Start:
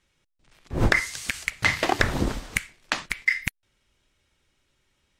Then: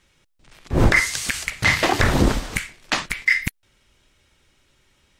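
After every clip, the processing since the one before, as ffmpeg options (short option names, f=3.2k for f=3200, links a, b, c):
-af "alimiter=limit=-15.5dB:level=0:latency=1:release=14,volume=9dB"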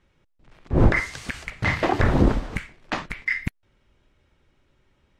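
-af "lowpass=f=1k:p=1"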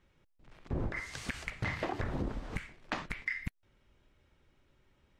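-af "acompressor=threshold=-27dB:ratio=10,volume=-4.5dB"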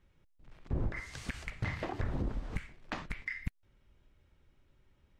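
-af "lowshelf=f=150:g=7.5,volume=-3.5dB"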